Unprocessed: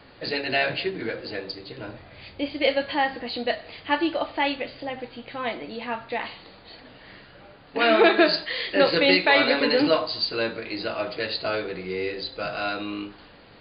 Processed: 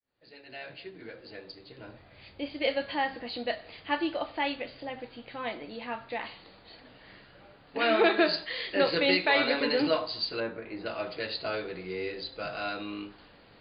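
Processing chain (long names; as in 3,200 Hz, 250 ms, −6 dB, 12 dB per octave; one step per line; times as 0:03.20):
fade in at the beginning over 2.81 s
0:10.40–0:10.86: low-pass filter 1,800 Hz 12 dB per octave
level −6 dB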